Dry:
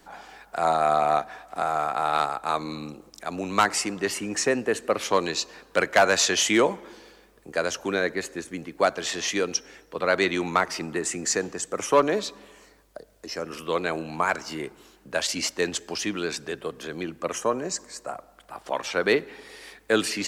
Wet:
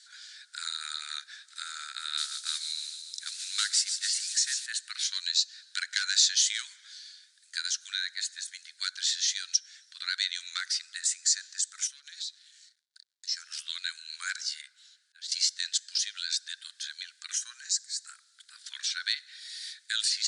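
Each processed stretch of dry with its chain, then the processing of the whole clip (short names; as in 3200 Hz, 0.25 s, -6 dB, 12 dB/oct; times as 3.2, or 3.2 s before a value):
2.17–4.66 modulation noise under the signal 12 dB + thin delay 0.145 s, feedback 65%, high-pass 3400 Hz, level -8.5 dB
11.87–13.27 passive tone stack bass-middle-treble 10-0-10 + backlash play -54 dBFS + compressor 12:1, threshold -40 dBFS
14.61–15.32 high shelf 3600 Hz -11 dB + auto swell 0.623 s
whole clip: Chebyshev band-pass 1500–9700 Hz, order 5; resonant high shelf 3200 Hz +7 dB, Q 3; compressor 1.5:1, threshold -33 dBFS; gain -1 dB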